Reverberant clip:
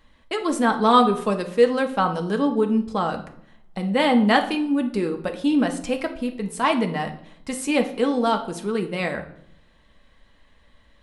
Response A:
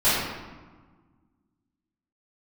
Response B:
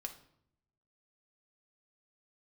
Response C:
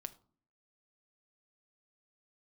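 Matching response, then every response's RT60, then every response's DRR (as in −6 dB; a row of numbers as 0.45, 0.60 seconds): B; 1.4, 0.70, 0.45 seconds; −17.5, 4.0, 9.5 decibels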